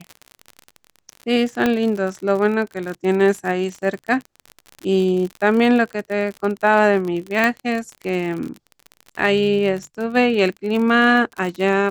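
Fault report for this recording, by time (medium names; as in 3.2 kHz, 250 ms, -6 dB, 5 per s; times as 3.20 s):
crackle 46 per s -25 dBFS
1.66 s: pop -6 dBFS
7.44 s: pop -6 dBFS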